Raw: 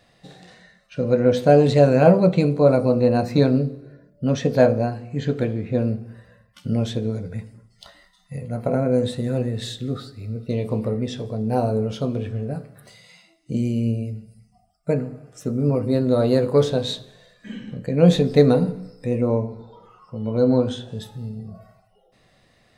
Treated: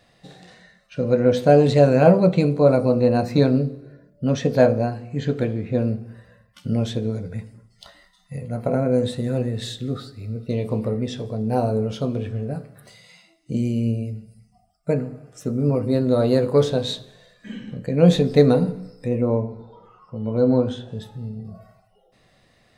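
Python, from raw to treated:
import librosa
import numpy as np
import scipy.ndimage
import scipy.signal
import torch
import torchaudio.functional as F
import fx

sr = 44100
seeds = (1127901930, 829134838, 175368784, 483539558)

y = fx.high_shelf(x, sr, hz=3700.0, db=-8.5, at=(19.08, 21.45))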